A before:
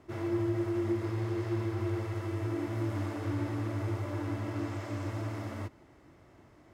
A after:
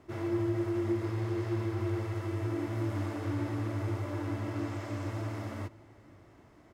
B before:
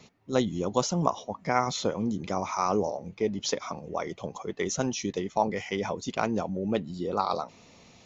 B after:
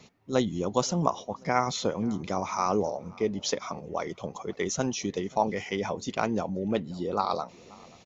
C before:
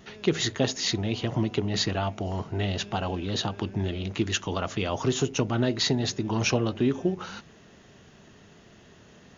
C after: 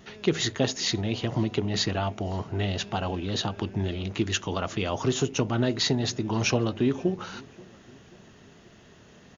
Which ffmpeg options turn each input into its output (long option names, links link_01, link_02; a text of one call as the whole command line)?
ffmpeg -i in.wav -filter_complex "[0:a]asplit=2[link_01][link_02];[link_02]adelay=532,lowpass=frequency=2400:poles=1,volume=-23.5dB,asplit=2[link_03][link_04];[link_04]adelay=532,lowpass=frequency=2400:poles=1,volume=0.5,asplit=2[link_05][link_06];[link_06]adelay=532,lowpass=frequency=2400:poles=1,volume=0.5[link_07];[link_01][link_03][link_05][link_07]amix=inputs=4:normalize=0" out.wav